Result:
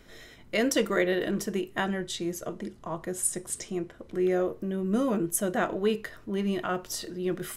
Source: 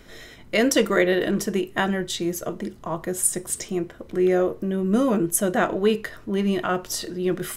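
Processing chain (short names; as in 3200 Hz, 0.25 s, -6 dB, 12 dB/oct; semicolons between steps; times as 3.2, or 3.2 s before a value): 1.82–4.13 LPF 12000 Hz 24 dB/oct; gain -6 dB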